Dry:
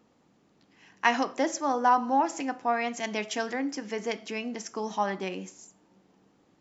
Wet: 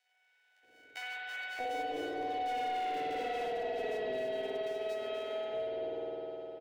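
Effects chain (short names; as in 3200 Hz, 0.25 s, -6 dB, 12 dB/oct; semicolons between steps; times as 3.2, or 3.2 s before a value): sample sorter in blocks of 64 samples; Doppler pass-by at 2.84, 26 m/s, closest 7.6 m; fixed phaser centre 480 Hz, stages 4; limiter -27.5 dBFS, peak gain reduction 10 dB; spring tank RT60 3 s, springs 51 ms, chirp 65 ms, DRR -9 dB; overdrive pedal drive 16 dB, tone 1000 Hz, clips at -18 dBFS; compressor, threshold -34 dBFS, peak gain reduction 9.5 dB; bands offset in time highs, lows 0.63 s, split 1100 Hz; three-band squash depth 40%; gain +1.5 dB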